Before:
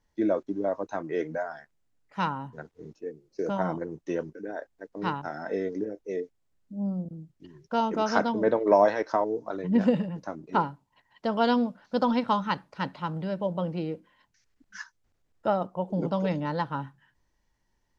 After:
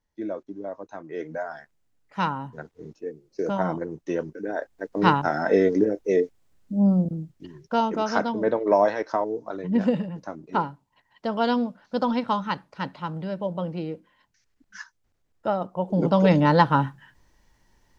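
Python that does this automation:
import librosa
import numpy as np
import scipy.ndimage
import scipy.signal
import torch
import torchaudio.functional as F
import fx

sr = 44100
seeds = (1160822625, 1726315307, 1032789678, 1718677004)

y = fx.gain(x, sr, db=fx.line((1.04, -6.0), (1.55, 3.0), (4.18, 3.0), (4.97, 11.0), (7.07, 11.0), (8.06, 0.5), (15.58, 0.5), (16.43, 12.0)))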